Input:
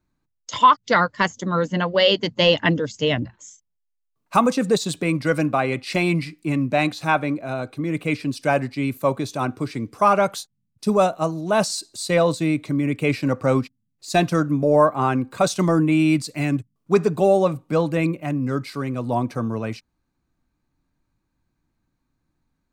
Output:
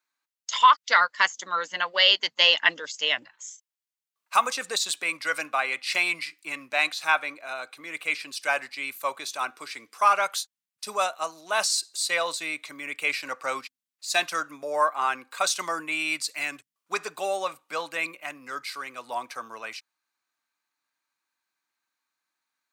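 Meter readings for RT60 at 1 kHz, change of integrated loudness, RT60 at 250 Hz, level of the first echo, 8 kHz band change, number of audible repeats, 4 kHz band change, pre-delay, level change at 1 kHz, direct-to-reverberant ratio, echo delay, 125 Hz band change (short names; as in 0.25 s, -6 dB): none, -4.5 dB, none, none, +2.5 dB, none, +2.5 dB, none, -3.5 dB, none, none, under -30 dB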